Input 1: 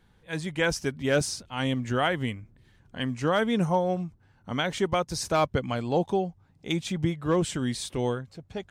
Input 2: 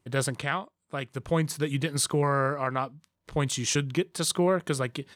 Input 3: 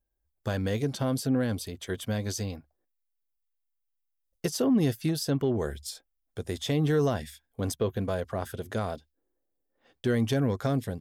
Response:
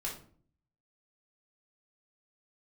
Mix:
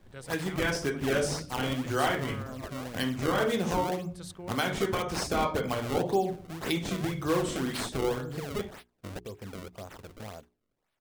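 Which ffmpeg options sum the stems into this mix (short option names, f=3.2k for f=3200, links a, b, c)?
-filter_complex "[0:a]acrossover=split=290[a][b];[a]acompressor=threshold=-33dB:ratio=6[c];[c][b]amix=inputs=2:normalize=0,volume=2.5dB,asplit=3[d][e][f];[e]volume=-7dB[g];[1:a]volume=-18dB[h];[2:a]alimiter=limit=-22dB:level=0:latency=1:release=331,aexciter=amount=5.1:drive=3.9:freq=7.1k,adelay=1450,volume=-8dB[i];[f]apad=whole_len=549369[j];[i][j]sidechaincompress=threshold=-26dB:ratio=8:attack=16:release=713[k];[d][k]amix=inputs=2:normalize=0,acrusher=samples=30:mix=1:aa=0.000001:lfo=1:lforange=48:lforate=1.9,acompressor=threshold=-30dB:ratio=6,volume=0dB[l];[3:a]atrim=start_sample=2205[m];[g][m]afir=irnorm=-1:irlink=0[n];[h][l][n]amix=inputs=3:normalize=0,bandreject=f=60:t=h:w=6,bandreject=f=120:t=h:w=6,bandreject=f=180:t=h:w=6,bandreject=f=240:t=h:w=6,bandreject=f=300:t=h:w=6,bandreject=f=360:t=h:w=6,bandreject=f=420:t=h:w=6"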